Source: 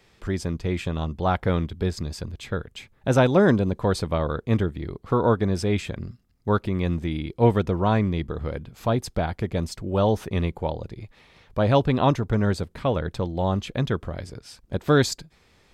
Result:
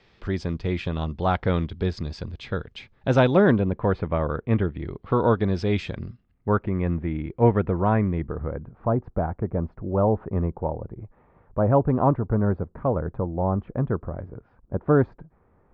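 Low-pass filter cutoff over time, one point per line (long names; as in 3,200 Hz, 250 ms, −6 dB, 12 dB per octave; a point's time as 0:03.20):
low-pass filter 24 dB per octave
0:03.19 4,900 Hz
0:03.78 2,400 Hz
0:04.33 2,400 Hz
0:05.89 5,400 Hz
0:06.53 2,100 Hz
0:08.07 2,100 Hz
0:08.74 1,300 Hz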